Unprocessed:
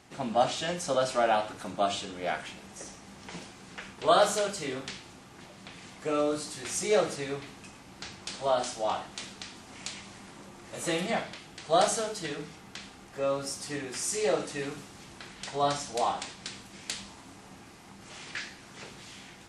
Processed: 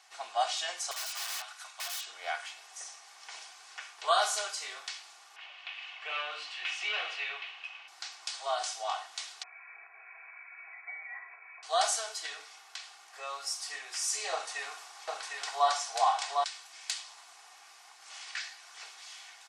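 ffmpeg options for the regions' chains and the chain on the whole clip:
ffmpeg -i in.wav -filter_complex "[0:a]asettb=1/sr,asplit=3[link_01][link_02][link_03];[link_01]atrim=end=0.914[link_04];[link_02]atrim=start=0.91:end=2.07,asetpts=PTS-STARTPTS,afade=type=in:duration=0.004:curve=qsin,afade=type=out:start_time=1.156:duration=0.004:curve=qsin,highpass=1100,aeval=exprs='(mod(37.6*val(0)+1,2)-1)/37.6':channel_layout=same[link_05];[link_03]atrim=start=2.066[link_06];[link_04][link_05]acrossfade=duration=0.004:curve1=hsin:curve2=qsin[link_07];[link_07][link_06]acrossfade=duration=0.004:curve1=qsin:curve2=hsin,asettb=1/sr,asplit=3[link_08][link_09][link_10];[link_08]atrim=end=5.364[link_11];[link_09]atrim=start=5.36:end=7.88,asetpts=PTS-STARTPTS,afade=type=in:duration=0.004:curve=qsin,afade=type=out:start_time=2.516:duration=0.004:curve=qsin,bandreject=frequency=50:width_type=h:width=6,bandreject=frequency=100:width_type=h:width=6,bandreject=frequency=150:width_type=h:width=6,bandreject=frequency=200:width_type=h:width=6,bandreject=frequency=250:width_type=h:width=6,bandreject=frequency=300:width_type=h:width=6,bandreject=frequency=350:width_type=h:width=6,bandreject=frequency=400:width_type=h:width=6,bandreject=frequency=450:width_type=h:width=6,asoftclip=type=hard:threshold=-28.5dB,lowpass=frequency=2800:width_type=q:width=4.8[link_12];[link_10]atrim=start=7.876[link_13];[link_11][link_12]acrossfade=duration=0.004:curve1=hsin:curve2=qsin[link_14];[link_14][link_13]acrossfade=duration=0.004:curve1=qsin:curve2=hsin,asettb=1/sr,asplit=3[link_15][link_16][link_17];[link_15]atrim=end=9.434[link_18];[link_16]atrim=start=9.43:end=11.63,asetpts=PTS-STARTPTS,afade=type=in:duration=0.004:curve=qsin,afade=type=out:start_time=2.196:duration=0.004:curve=qsin,aecho=1:1:3.2:0.85,atrim=end_sample=97020,acompressor=threshold=-43dB:ratio=3:attack=3.2:release=140:knee=1:detection=peak,lowpass=frequency=2200:width_type=q:width=0.5098,lowpass=frequency=2200:width_type=q:width=0.6013,lowpass=frequency=2200:width_type=q:width=0.9,lowpass=frequency=2200:width_type=q:width=2.563,afreqshift=-2600[link_19];[link_17]atrim=start=11.626[link_20];[link_18][link_19]acrossfade=duration=0.004:curve1=hsin:curve2=qsin[link_21];[link_21][link_20]acrossfade=duration=0.004:curve1=qsin:curve2=hsin,asettb=1/sr,asplit=3[link_22][link_23][link_24];[link_22]atrim=end=14.324[link_25];[link_23]atrim=start=14.32:end=16.44,asetpts=PTS-STARTPTS,afade=type=in:duration=0.004:curve=qsin,afade=type=out:start_time=2.116:duration=0.004:curve=qsin,equalizer=frequency=810:width_type=o:width=1.9:gain=6,aecho=1:1:754:0.668,atrim=end_sample=93492[link_26];[link_24]atrim=start=16.436[link_27];[link_25][link_26]acrossfade=duration=0.004:curve1=hsin:curve2=qsin[link_28];[link_28][link_27]acrossfade=duration=0.004:curve1=qsin:curve2=hsin,highpass=frequency=760:width=0.5412,highpass=frequency=760:width=1.3066,equalizer=frequency=5300:width_type=o:width=0.95:gain=4.5,aecho=1:1:2.7:0.45,volume=-2.5dB" out.wav

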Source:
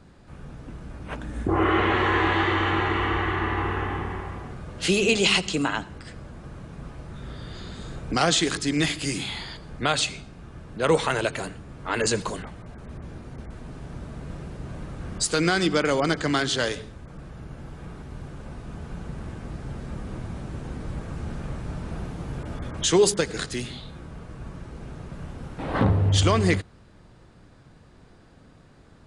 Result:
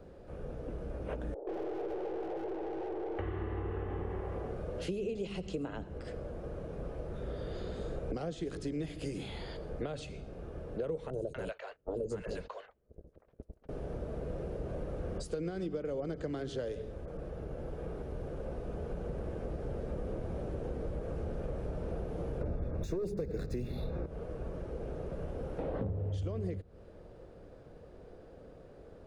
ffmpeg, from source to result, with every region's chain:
ffmpeg -i in.wav -filter_complex "[0:a]asettb=1/sr,asplit=3[link_01][link_02][link_03];[link_01]atrim=end=1.344[link_04];[link_02]atrim=start=1.34:end=3.19,asetpts=PTS-STARTPTS,afade=type=in:duration=0.004:curve=qsin,afade=type=out:start_time=1.846:duration=0.004:curve=qsin,asuperpass=centerf=540:order=20:qfactor=0.89,aeval=exprs='(tanh(70.8*val(0)+0.4)-tanh(0.4))/70.8':channel_layout=same[link_05];[link_03]atrim=start=3.186[link_06];[link_04][link_05]acrossfade=duration=0.004:curve1=hsin:curve2=qsin[link_07];[link_07][link_06]acrossfade=duration=0.004:curve1=qsin:curve2=hsin,asettb=1/sr,asplit=3[link_08][link_09][link_10];[link_08]atrim=end=11.104[link_11];[link_09]atrim=start=11.1:end=13.69,asetpts=PTS-STARTPTS,afade=type=in:duration=0.004:curve=qsin,afade=type=out:start_time=2.586:duration=0.004:curve=qsin,agate=range=-34dB:threshold=-35dB:ratio=16:release=100:detection=peak,acrossover=split=710|5000[link_12][link_13][link_14];[link_14]adelay=30[link_15];[link_13]adelay=240[link_16];[link_12][link_16][link_15]amix=inputs=3:normalize=0,atrim=end_sample=114219[link_17];[link_10]atrim=start=13.686[link_18];[link_11][link_17]acrossfade=duration=0.004:curve1=hsin:curve2=qsin[link_19];[link_19][link_18]acrossfade=duration=0.004:curve1=qsin:curve2=hsin,asettb=1/sr,asplit=3[link_20][link_21][link_22];[link_20]atrim=end=22.414[link_23];[link_21]atrim=start=22.41:end=24.06,asetpts=PTS-STARTPTS,afade=type=in:duration=0.004:curve=qsin,afade=type=out:start_time=1.646:duration=0.004:curve=qsin,aeval=exprs='0.398*sin(PI/2*2.51*val(0)/0.398)':channel_layout=same,adynamicsmooth=sensitivity=6:basefreq=3800,asuperstop=centerf=3100:order=20:qfactor=5.1[link_24];[link_22]atrim=start=24.056[link_25];[link_23][link_24]acrossfade=duration=0.004:curve1=hsin:curve2=qsin[link_26];[link_26][link_25]acrossfade=duration=0.004:curve1=qsin:curve2=hsin,acrossover=split=240[link_27][link_28];[link_28]acompressor=threshold=-37dB:ratio=4[link_29];[link_27][link_29]amix=inputs=2:normalize=0,equalizer=frequency=125:width_type=o:width=1:gain=-6,equalizer=frequency=250:width_type=o:width=1:gain=-5,equalizer=frequency=500:width_type=o:width=1:gain=12,equalizer=frequency=1000:width_type=o:width=1:gain=-7,equalizer=frequency=2000:width_type=o:width=1:gain=-6,equalizer=frequency=4000:width_type=o:width=1:gain=-7,equalizer=frequency=8000:width_type=o:width=1:gain=-12,acompressor=threshold=-33dB:ratio=6" out.wav

